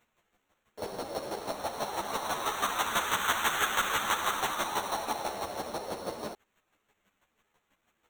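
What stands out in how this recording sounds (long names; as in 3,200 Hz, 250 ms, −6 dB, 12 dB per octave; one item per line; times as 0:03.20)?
a quantiser's noise floor 12 bits, dither triangular
chopped level 6.1 Hz, depth 60%, duty 20%
aliases and images of a low sample rate 4,900 Hz, jitter 0%
a shimmering, thickened sound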